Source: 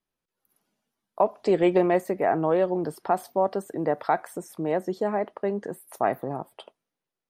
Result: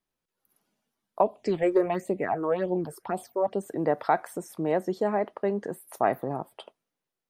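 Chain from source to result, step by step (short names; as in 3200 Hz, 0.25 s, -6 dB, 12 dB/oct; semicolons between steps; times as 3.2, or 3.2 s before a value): 1.22–3.62 phaser stages 6, 0.96 Hz -> 2.9 Hz, lowest notch 190–1700 Hz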